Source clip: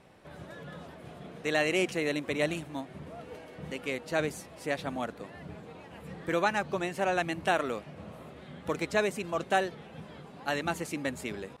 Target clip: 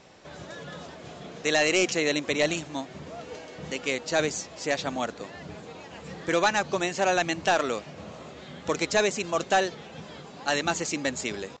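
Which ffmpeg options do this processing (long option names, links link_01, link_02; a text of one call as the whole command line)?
ffmpeg -i in.wav -af "bass=frequency=250:gain=-4,treble=frequency=4000:gain=12,asoftclip=type=hard:threshold=-19.5dB,aresample=16000,aresample=44100,volume=5dB" out.wav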